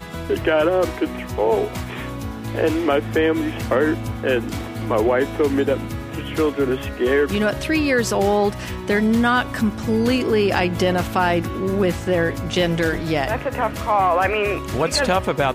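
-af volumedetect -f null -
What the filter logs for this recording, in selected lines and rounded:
mean_volume: -20.1 dB
max_volume: -6.2 dB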